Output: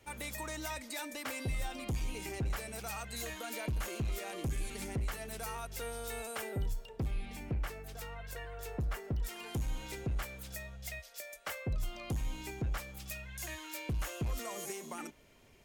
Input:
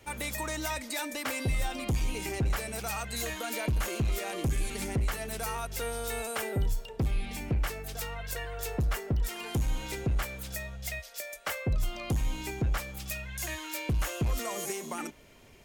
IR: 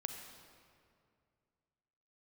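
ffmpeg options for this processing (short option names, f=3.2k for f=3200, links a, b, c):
-filter_complex "[0:a]asplit=3[a][b][c];[a]afade=t=out:st=6.72:d=0.02[d];[b]adynamicequalizer=threshold=0.00251:dfrequency=2600:dqfactor=0.7:tfrequency=2600:tqfactor=0.7:attack=5:release=100:ratio=0.375:range=2.5:mode=cutabove:tftype=highshelf,afade=t=in:st=6.72:d=0.02,afade=t=out:st=9.03:d=0.02[e];[c]afade=t=in:st=9.03:d=0.02[f];[d][e][f]amix=inputs=3:normalize=0,volume=-6.5dB"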